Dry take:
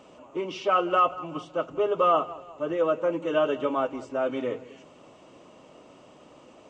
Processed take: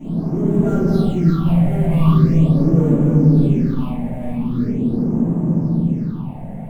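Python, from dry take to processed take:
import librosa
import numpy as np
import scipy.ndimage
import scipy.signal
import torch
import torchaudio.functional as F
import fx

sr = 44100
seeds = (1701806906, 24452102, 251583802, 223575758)

y = scipy.ndimage.median_filter(x, 15, mode='constant')
y = fx.doppler_pass(y, sr, speed_mps=25, closest_m=3.7, pass_at_s=1.59)
y = fx.power_curve(y, sr, exponent=0.35)
y = fx.dmg_noise_band(y, sr, seeds[0], low_hz=160.0, high_hz=1100.0, level_db=-41.0)
y = fx.curve_eq(y, sr, hz=(100.0, 170.0, 570.0, 1500.0), db=(0, 11, -13, -16))
y = y + 10.0 ** (-6.0 / 20.0) * np.pad(y, (int(344 * sr / 1000.0), 0))[:len(y)]
y = fx.room_shoebox(y, sr, seeds[1], volume_m3=420.0, walls='mixed', distance_m=7.8)
y = fx.phaser_stages(y, sr, stages=6, low_hz=320.0, high_hz=4300.0, hz=0.42, feedback_pct=45)
y = F.gain(torch.from_numpy(y), -3.5).numpy()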